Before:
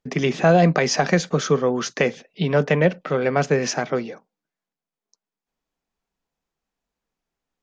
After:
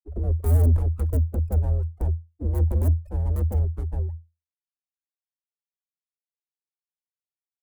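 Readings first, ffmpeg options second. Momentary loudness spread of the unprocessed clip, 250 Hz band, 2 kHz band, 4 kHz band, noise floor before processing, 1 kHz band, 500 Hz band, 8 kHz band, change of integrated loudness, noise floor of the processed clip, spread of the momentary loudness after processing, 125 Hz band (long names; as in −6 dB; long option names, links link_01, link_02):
8 LU, −13.5 dB, −32.0 dB, below −30 dB, below −85 dBFS, −20.0 dB, −17.5 dB, can't be measured, −4.0 dB, below −85 dBFS, 9 LU, +3.0 dB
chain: -filter_complex "[0:a]equalizer=frequency=230:width_type=o:width=0.26:gain=2.5,acrossover=split=130|1300[link_01][link_02][link_03];[link_03]alimiter=limit=-18.5dB:level=0:latency=1:release=47[link_04];[link_01][link_02][link_04]amix=inputs=3:normalize=0,acrossover=split=2700[link_05][link_06];[link_06]acompressor=threshold=-43dB:ratio=4:attack=1:release=60[link_07];[link_05][link_07]amix=inputs=2:normalize=0,afftfilt=real='re*gte(hypot(re,im),0.178)':imag='im*gte(hypot(re,im),0.178)':win_size=1024:overlap=0.75,aeval=exprs='(mod(2.82*val(0)+1,2)-1)/2.82':channel_layout=same,adynamicsmooth=sensitivity=6.5:basefreq=600,aeval=exprs='abs(val(0))':channel_layout=same,afreqshift=-83,firequalizer=gain_entry='entry(100,0);entry(180,-8);entry(350,-5);entry(880,-20);entry(2300,-29);entry(3600,-28);entry(5700,-24);entry(9000,-10)':delay=0.05:min_phase=1"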